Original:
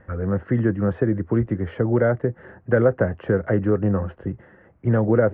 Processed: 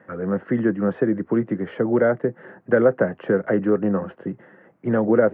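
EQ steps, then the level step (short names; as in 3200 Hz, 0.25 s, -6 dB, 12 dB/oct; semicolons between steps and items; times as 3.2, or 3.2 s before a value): HPF 160 Hz 24 dB/oct; +1.5 dB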